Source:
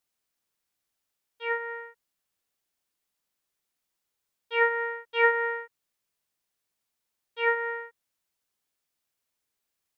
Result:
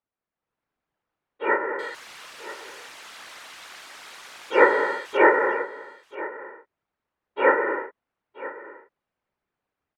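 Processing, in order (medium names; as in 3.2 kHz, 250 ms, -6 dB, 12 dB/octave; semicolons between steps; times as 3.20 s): 1.79–5.17 s: zero-crossing glitches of -20.5 dBFS; low-pass 1.5 kHz 12 dB/octave; level rider gain up to 9 dB; whisper effect; delay 978 ms -16.5 dB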